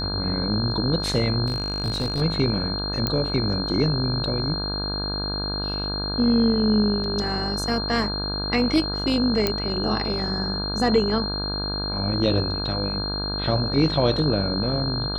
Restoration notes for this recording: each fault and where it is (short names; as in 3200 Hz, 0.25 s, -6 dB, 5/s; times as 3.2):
buzz 50 Hz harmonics 33 -30 dBFS
tone 4200 Hz -28 dBFS
1.46–2.22 clipped -20 dBFS
3.07 pop -9 dBFS
7.04 gap 3 ms
9.47 pop -7 dBFS